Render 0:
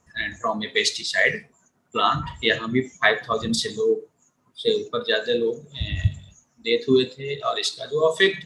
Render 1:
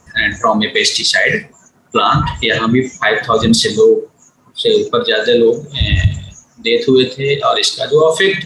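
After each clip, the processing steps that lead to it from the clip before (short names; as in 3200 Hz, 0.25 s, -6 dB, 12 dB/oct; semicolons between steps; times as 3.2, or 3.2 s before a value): maximiser +16 dB; gain -1 dB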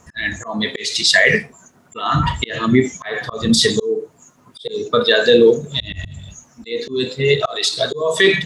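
auto swell 0.34 s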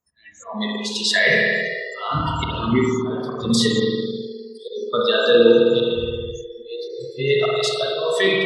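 spring tank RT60 2.6 s, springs 52 ms, chirp 30 ms, DRR -2.5 dB; spectral repair 6.93–7.16, 230–7500 Hz before; spectral noise reduction 29 dB; gain -6.5 dB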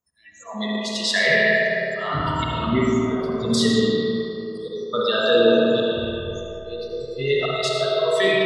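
digital reverb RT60 3.4 s, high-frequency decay 0.35×, pre-delay 40 ms, DRR 1 dB; gain -3 dB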